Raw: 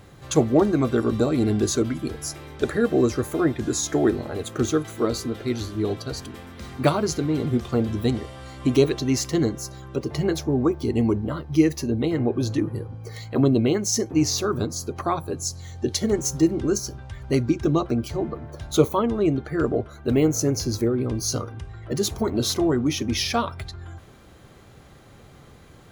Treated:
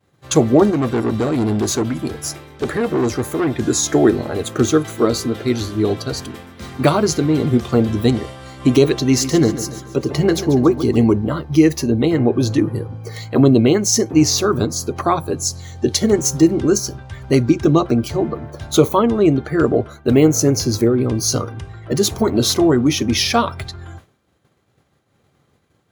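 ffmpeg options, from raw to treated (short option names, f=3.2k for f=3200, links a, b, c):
-filter_complex "[0:a]asettb=1/sr,asplit=3[a][b][c];[a]atrim=end=0.704[d];[b]atrim=start=0.7:end=3.52,asetpts=PTS-STARTPTS,afade=t=in:d=0.004:c=qsin,afade=t=out:st=2.816:d=0.004:c=qsin,aeval=exprs='(tanh(11.2*val(0)+0.35)-tanh(0.35))/11.2':c=same[e];[c]atrim=start=3.516[f];[d][e]acrossfade=d=0.004:c1=hsin:c2=qsin[g];[g][f]acrossfade=d=0.004:c1=qsin:c2=hsin,asettb=1/sr,asplit=3[h][i][j];[h]atrim=end=8.994[k];[i]atrim=start=8.99:end=11.04,asetpts=PTS-STARTPTS,afade=t=in:d=0.004:c=qsin,afade=t=out:st=2.046:d=0.004:c=qsin,aecho=1:1:140|280|420|560|700:0.237|0.111|0.0524|0.0246|0.0116,atrim=end_sample=90405[l];[j]atrim=start=11.036[m];[k][l]acrossfade=d=0.004:c1=hsin:c2=qsin[n];[n][m]acrossfade=d=0.004:c1=qsin:c2=hsin,agate=range=-33dB:threshold=-35dB:ratio=3:detection=peak,highpass=80,alimiter=level_in=8.5dB:limit=-1dB:release=50:level=0:latency=1,volume=-1dB"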